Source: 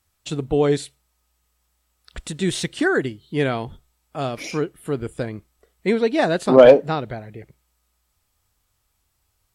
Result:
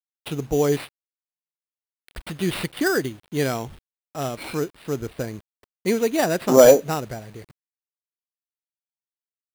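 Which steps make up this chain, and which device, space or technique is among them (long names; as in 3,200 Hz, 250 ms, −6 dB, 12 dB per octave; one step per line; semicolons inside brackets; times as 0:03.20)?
early 8-bit sampler (sample-rate reduction 6,500 Hz, jitter 0%; bit reduction 8 bits)
level −2 dB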